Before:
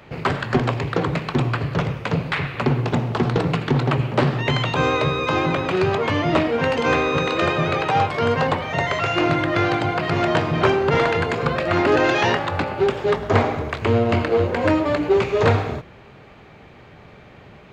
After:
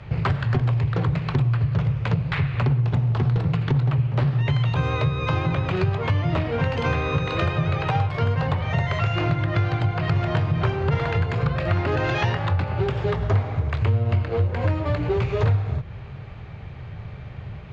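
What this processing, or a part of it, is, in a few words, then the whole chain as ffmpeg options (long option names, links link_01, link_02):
jukebox: -af "lowpass=5600,lowshelf=frequency=170:width_type=q:width=1.5:gain=12.5,acompressor=threshold=-20dB:ratio=4"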